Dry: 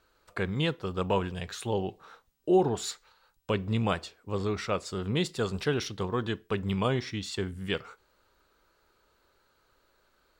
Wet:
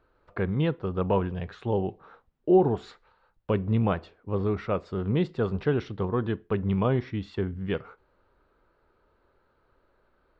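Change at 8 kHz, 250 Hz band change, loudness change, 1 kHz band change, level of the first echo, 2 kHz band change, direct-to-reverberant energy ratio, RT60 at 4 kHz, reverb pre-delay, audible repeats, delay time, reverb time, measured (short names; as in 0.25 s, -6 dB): under -20 dB, +4.0 dB, +3.0 dB, +1.0 dB, none, -3.0 dB, none, none, none, none, none, none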